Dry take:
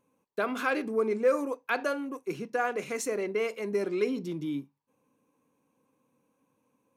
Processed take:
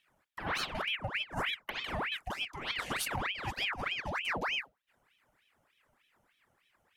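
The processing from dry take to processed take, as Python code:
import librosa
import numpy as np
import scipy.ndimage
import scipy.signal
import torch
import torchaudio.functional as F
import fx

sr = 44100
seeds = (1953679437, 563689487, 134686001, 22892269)

y = fx.over_compress(x, sr, threshold_db=-32.0, ratio=-0.5)
y = fx.ring_lfo(y, sr, carrier_hz=1600.0, swing_pct=80, hz=3.3)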